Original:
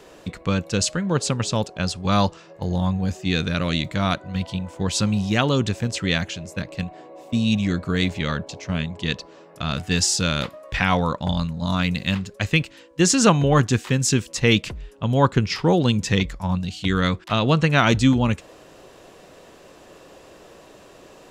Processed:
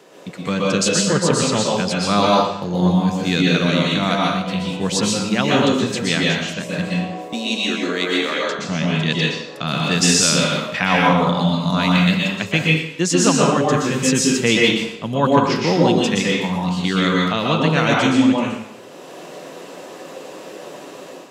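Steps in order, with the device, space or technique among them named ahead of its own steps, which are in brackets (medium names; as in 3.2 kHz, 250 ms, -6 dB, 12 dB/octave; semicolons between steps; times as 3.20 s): far laptop microphone (reverberation RT60 0.75 s, pre-delay 113 ms, DRR -3.5 dB; high-pass 140 Hz 24 dB/octave; level rider gain up to 7 dB); 7.33–8.59 s: high-pass 300 Hz 24 dB/octave; trim -1 dB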